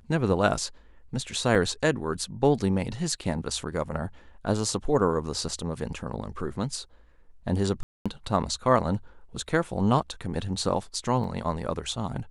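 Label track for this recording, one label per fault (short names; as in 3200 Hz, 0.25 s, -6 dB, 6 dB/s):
1.550000	1.550000	gap 4.9 ms
7.830000	8.060000	gap 0.226 s
11.240000	11.240000	gap 2.7 ms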